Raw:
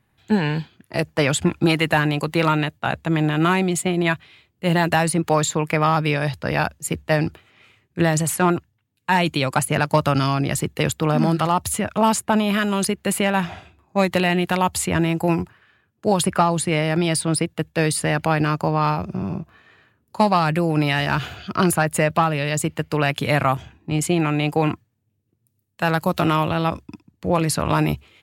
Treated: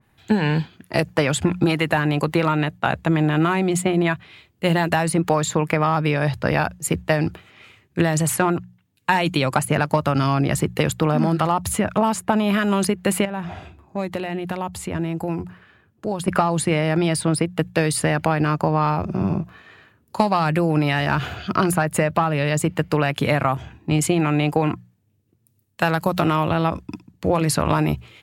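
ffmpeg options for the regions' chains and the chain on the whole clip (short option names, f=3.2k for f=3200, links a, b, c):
-filter_complex "[0:a]asettb=1/sr,asplit=3[a][b][c];[a]atrim=end=13.254[d];[b]atrim=start=13.25:end=16.28,asetpts=PTS-STARTPTS,afade=t=in:d=0.004:c=qsin,afade=t=out:st=3.026:d=0.004:c=qsin,acompressor=threshold=-40dB:ratio=2:attack=3.2:release=140:knee=1:detection=peak,tiltshelf=f=1.1k:g=3.5[e];[c]atrim=start=16.276[f];[d][e]acrossfade=d=0.004:c1=hsin:c2=qsin[g];[g][f]acrossfade=d=0.004:c1=qsin:c2=hsin,bandreject=f=60:t=h:w=6,bandreject=f=120:t=h:w=6,bandreject=f=180:t=h:w=6,acompressor=threshold=-20dB:ratio=6,adynamicequalizer=threshold=0.00794:dfrequency=2300:dqfactor=0.7:tfrequency=2300:tqfactor=0.7:attack=5:release=100:ratio=0.375:range=3:mode=cutabove:tftype=highshelf,volume=5.5dB"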